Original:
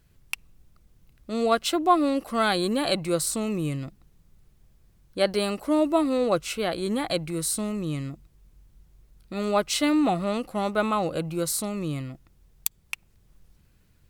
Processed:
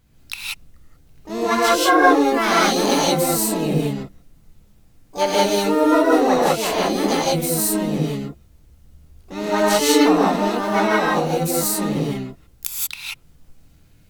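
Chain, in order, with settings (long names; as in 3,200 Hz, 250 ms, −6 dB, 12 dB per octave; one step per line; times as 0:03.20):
tape wow and flutter 17 cents
pitch-shifted copies added +7 semitones −2 dB, +12 semitones −16 dB
reverb whose tail is shaped and stops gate 210 ms rising, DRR −5.5 dB
level −1 dB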